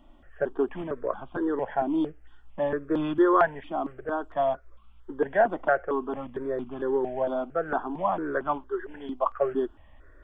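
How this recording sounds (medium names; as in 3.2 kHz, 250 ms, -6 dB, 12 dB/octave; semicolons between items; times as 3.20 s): notches that jump at a steady rate 4.4 Hz 450–1800 Hz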